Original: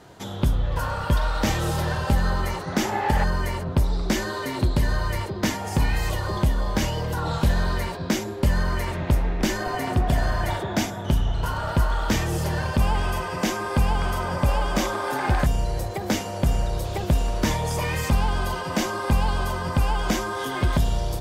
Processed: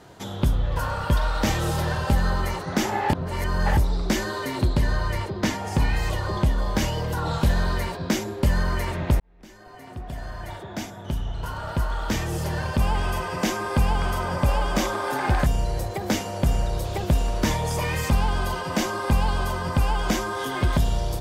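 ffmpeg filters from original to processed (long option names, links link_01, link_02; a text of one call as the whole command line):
ffmpeg -i in.wav -filter_complex "[0:a]asettb=1/sr,asplit=3[link_01][link_02][link_03];[link_01]atrim=end=4.734[link_04];[link_02]atrim=start=4.73:end=6.58,asetpts=PTS-STARTPTS,afade=type=in:duration=0.004:curve=qsin,afade=type=out:start_time=1.846:duration=0.004:curve=qsin,highshelf=frequency=9700:gain=-8.5[link_05];[link_03]atrim=start=6.576[link_06];[link_04][link_05]acrossfade=duration=0.004:curve1=hsin:curve2=qsin[link_07];[link_07][link_06]acrossfade=duration=0.004:curve1=qsin:curve2=hsin,asplit=4[link_08][link_09][link_10][link_11];[link_08]atrim=end=3.132[link_12];[link_09]atrim=start=3.128:end=3.772,asetpts=PTS-STARTPTS,areverse[link_13];[link_10]atrim=start=3.768:end=9.2,asetpts=PTS-STARTPTS,afade=type=out:start_time=5.428:duration=0.004:curve=hsin[link_14];[link_11]atrim=start=9.2,asetpts=PTS-STARTPTS,afade=type=in:duration=4.1[link_15];[link_12][link_13]acrossfade=duration=0.004:curve1=hsin:curve2=hsin[link_16];[link_14][link_15]concat=n=2:v=0:a=1[link_17];[link_16][link_17]acrossfade=duration=0.004:curve1=hsin:curve2=hsin" out.wav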